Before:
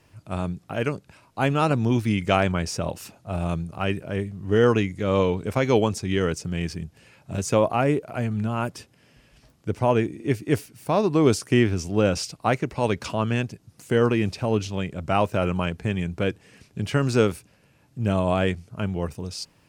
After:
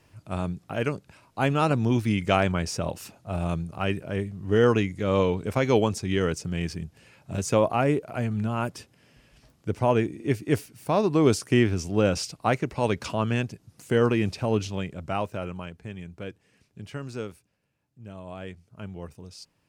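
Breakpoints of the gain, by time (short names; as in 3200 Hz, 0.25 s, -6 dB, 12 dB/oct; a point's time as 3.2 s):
14.67 s -1.5 dB
15.7 s -12.5 dB
16.78 s -12.5 dB
18.13 s -19.5 dB
18.85 s -11 dB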